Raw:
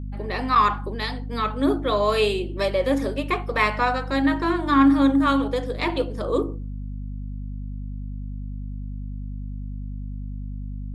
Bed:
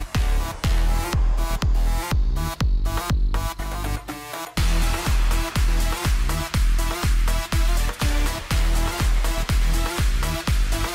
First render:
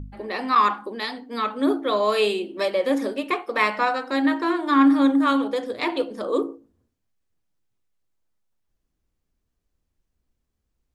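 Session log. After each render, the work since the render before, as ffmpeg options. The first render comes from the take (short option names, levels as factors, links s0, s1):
-af "bandreject=f=50:t=h:w=4,bandreject=f=100:t=h:w=4,bandreject=f=150:t=h:w=4,bandreject=f=200:t=h:w=4,bandreject=f=250:t=h:w=4"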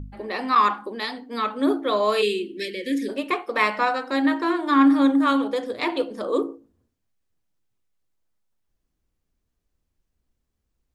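-filter_complex "[0:a]asplit=3[s0][s1][s2];[s0]afade=t=out:st=2.21:d=0.02[s3];[s1]asuperstop=centerf=910:order=12:qfactor=0.71,afade=t=in:st=2.21:d=0.02,afade=t=out:st=3.08:d=0.02[s4];[s2]afade=t=in:st=3.08:d=0.02[s5];[s3][s4][s5]amix=inputs=3:normalize=0"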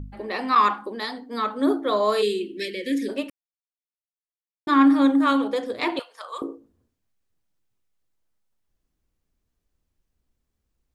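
-filter_complex "[0:a]asettb=1/sr,asplit=3[s0][s1][s2];[s0]atrim=end=0.964[s3];[s1]atrim=start=0.96:end=2.41,asetpts=PTS-STARTPTS,afade=t=in:d=0.004:c=qsin,afade=t=out:st=1.446:d=0.004:c=qsin,equalizer=f=2600:w=2.9:g=-8.5[s4];[s2]atrim=start=2.406[s5];[s3][s4]acrossfade=d=0.004:c1=hsin:c2=qsin[s6];[s6][s5]acrossfade=d=0.004:c1=qsin:c2=hsin,asettb=1/sr,asplit=3[s7][s8][s9];[s7]atrim=end=5.994[s10];[s8]atrim=start=5.99:end=6.42,asetpts=PTS-STARTPTS,afade=t=in:d=0.004:c=qsin,afade=t=out:st=0.426:d=0.004:c=qsin,highpass=f=890:w=0.5412,highpass=f=890:w=1.3066[s11];[s9]atrim=start=6.416[s12];[s10][s11]acrossfade=d=0.004:c1=hsin:c2=qsin[s13];[s13][s12]acrossfade=d=0.004:c1=qsin:c2=hsin,asplit=3[s14][s15][s16];[s14]atrim=end=3.3,asetpts=PTS-STARTPTS,afade=t=out:st=3.296:d=0.004:c=hsin[s17];[s15]atrim=start=3.3:end=4.67,asetpts=PTS-STARTPTS,volume=0[s18];[s16]atrim=start=4.67,asetpts=PTS-STARTPTS,afade=t=in:d=0.004:c=hsin[s19];[s17][s18][s19]concat=n=3:v=0:a=1"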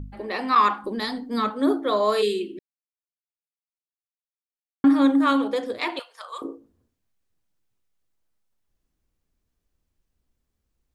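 -filter_complex "[0:a]asettb=1/sr,asplit=3[s0][s1][s2];[s0]atrim=end=0.844[s3];[s1]atrim=start=0.84:end=1.5,asetpts=PTS-STARTPTS,afade=t=in:d=0.004:c=qsin,afade=t=out:st=0.656:d=0.004:c=qsin,bass=f=250:g=13,treble=f=4000:g=4[s4];[s2]atrim=start=1.496[s5];[s3][s4]acrossfade=d=0.004:c1=hsin:c2=qsin[s6];[s6][s5]acrossfade=d=0.004:c1=qsin:c2=hsin,asettb=1/sr,asplit=3[s7][s8][s9];[s7]atrim=end=5.784[s10];[s8]atrim=start=5.78:end=6.45,asetpts=PTS-STARTPTS,afade=t=in:d=0.004:c=qsin,afade=t=out:st=0.666:d=0.004:c=qsin,lowshelf=f=400:g=-11[s11];[s9]atrim=start=6.446[s12];[s10][s11]acrossfade=d=0.004:c1=hsin:c2=qsin[s13];[s13][s12]acrossfade=d=0.004:c1=qsin:c2=hsin,asplit=3[s14][s15][s16];[s14]atrim=end=2.59,asetpts=PTS-STARTPTS,afade=t=out:st=2.586:d=0.004:c=hsin[s17];[s15]atrim=start=2.59:end=4.84,asetpts=PTS-STARTPTS,volume=0[s18];[s16]atrim=start=4.84,asetpts=PTS-STARTPTS,afade=t=in:d=0.004:c=hsin[s19];[s17][s18][s19]concat=n=3:v=0:a=1"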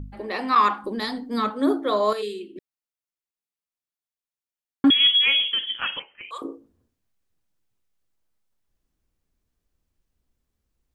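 -filter_complex "[0:a]asettb=1/sr,asplit=3[s0][s1][s2];[s0]atrim=end=4.904[s3];[s1]atrim=start=4.9:end=6.31,asetpts=PTS-STARTPTS,afade=t=in:d=0.004:c=qsin,afade=t=out:st=1.406:d=0.004:c=qsin,lowpass=f=3100:t=q:w=0.5098,lowpass=f=3100:t=q:w=0.6013,lowpass=f=3100:t=q:w=0.9,lowpass=f=3100:t=q:w=2.563,afreqshift=-3600[s4];[s2]atrim=start=6.306[s5];[s3][s4]acrossfade=d=0.004:c1=hsin:c2=qsin[s6];[s6][s5]acrossfade=d=0.004:c1=qsin:c2=hsin,asplit=3[s7][s8][s9];[s7]atrim=end=2.132[s10];[s8]atrim=start=2.128:end=2.562,asetpts=PTS-STARTPTS,volume=0.422[s11];[s9]atrim=start=2.558[s12];[s10][s11]acrossfade=d=0.004:c1=hsin:c2=hsin[s13];[s13][s12]acrossfade=d=0.004:c1=hsin:c2=hsin"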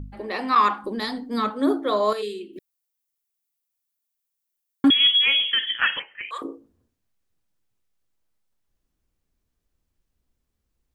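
-filter_complex "[0:a]asplit=3[s0][s1][s2];[s0]afade=t=out:st=2.52:d=0.02[s3];[s1]aemphasis=mode=production:type=50kf,afade=t=in:st=2.52:d=0.02,afade=t=out:st=4.88:d=0.02[s4];[s2]afade=t=in:st=4.88:d=0.02[s5];[s3][s4][s5]amix=inputs=3:normalize=0,asettb=1/sr,asplit=3[s6][s7][s8];[s6]atrim=end=5.484[s9];[s7]atrim=start=5.48:end=6.43,asetpts=PTS-STARTPTS,afade=t=in:d=0.004:c=qsin,afade=t=out:st=0.946:d=0.004:c=qsin,equalizer=f=1800:t=o:w=0.55:g=15[s10];[s8]atrim=start=6.426[s11];[s9][s10]acrossfade=d=0.004:c1=hsin:c2=qsin[s12];[s12][s11]acrossfade=d=0.004:c1=qsin:c2=hsin"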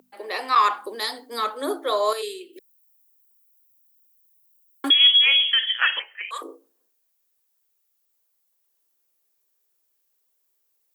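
-af "highpass=f=390:w=0.5412,highpass=f=390:w=1.3066,aemphasis=mode=production:type=50fm"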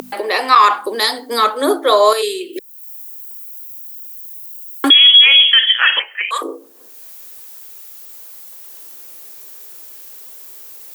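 -af "acompressor=mode=upward:threshold=0.0398:ratio=2.5,alimiter=level_in=3.76:limit=0.891:release=50:level=0:latency=1"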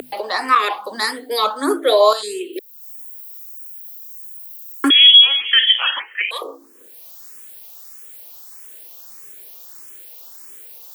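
-filter_complex "[0:a]asplit=2[s0][s1];[s1]afreqshift=1.6[s2];[s0][s2]amix=inputs=2:normalize=1"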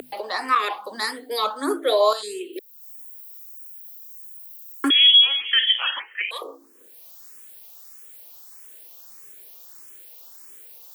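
-af "volume=0.531"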